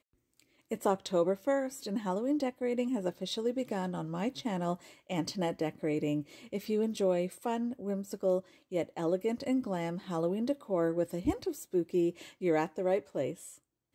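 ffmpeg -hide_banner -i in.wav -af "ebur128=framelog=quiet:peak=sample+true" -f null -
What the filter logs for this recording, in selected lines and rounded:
Integrated loudness:
  I:         -33.4 LUFS
  Threshold: -43.5 LUFS
Loudness range:
  LRA:         2.2 LU
  Threshold: -53.5 LUFS
  LRA low:   -34.8 LUFS
  LRA high:  -32.6 LUFS
Sample peak:
  Peak:      -16.6 dBFS
True peak:
  Peak:      -16.6 dBFS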